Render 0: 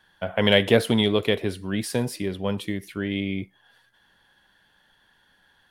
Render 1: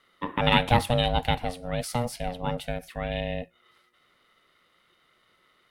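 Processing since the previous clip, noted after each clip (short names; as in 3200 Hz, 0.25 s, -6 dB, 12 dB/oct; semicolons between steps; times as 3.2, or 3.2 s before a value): ring modulator 360 Hz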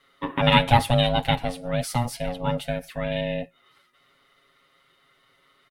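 comb 7.3 ms, depth 95%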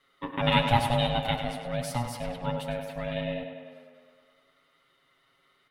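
tape echo 0.101 s, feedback 72%, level -6.5 dB, low-pass 4600 Hz; gain -6 dB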